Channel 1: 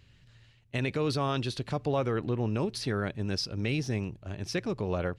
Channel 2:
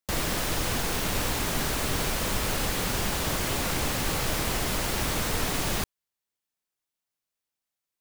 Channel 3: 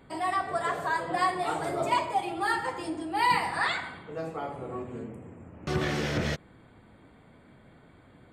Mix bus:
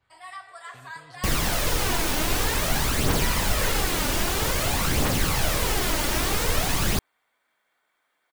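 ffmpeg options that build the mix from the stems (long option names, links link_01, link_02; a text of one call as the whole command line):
ffmpeg -i stem1.wav -i stem2.wav -i stem3.wav -filter_complex "[0:a]acrossover=split=160|3000[link_01][link_02][link_03];[link_02]acompressor=threshold=-41dB:ratio=6[link_04];[link_01][link_04][link_03]amix=inputs=3:normalize=0,volume=-17dB[link_05];[1:a]aphaser=in_gain=1:out_gain=1:delay=3.5:decay=0.43:speed=0.51:type=triangular,adelay=1150,volume=2.5dB[link_06];[2:a]highpass=1100,adynamicequalizer=threshold=0.00794:dfrequency=1900:dqfactor=0.7:tfrequency=1900:tqfactor=0.7:attack=5:release=100:ratio=0.375:range=2:mode=boostabove:tftype=highshelf,volume=-9dB[link_07];[link_05][link_06][link_07]amix=inputs=3:normalize=0" out.wav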